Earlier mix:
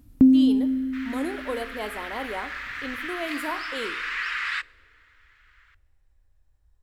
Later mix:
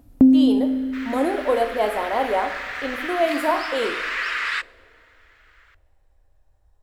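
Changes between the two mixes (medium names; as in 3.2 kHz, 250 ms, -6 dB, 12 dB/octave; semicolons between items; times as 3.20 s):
speech: send +8.0 dB; second sound: add treble shelf 3.2 kHz +6.5 dB; master: add peaking EQ 650 Hz +11.5 dB 1.3 oct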